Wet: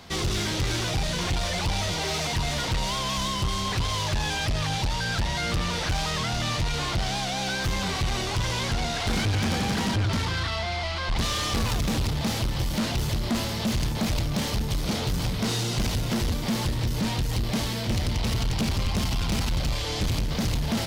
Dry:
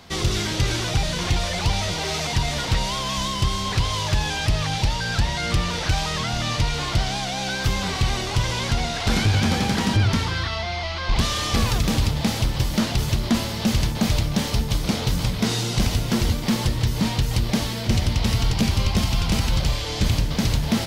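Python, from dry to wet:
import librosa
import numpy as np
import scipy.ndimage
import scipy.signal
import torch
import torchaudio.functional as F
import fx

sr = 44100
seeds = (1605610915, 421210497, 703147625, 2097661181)

y = 10.0 ** (-21.5 / 20.0) * np.tanh(x / 10.0 ** (-21.5 / 20.0))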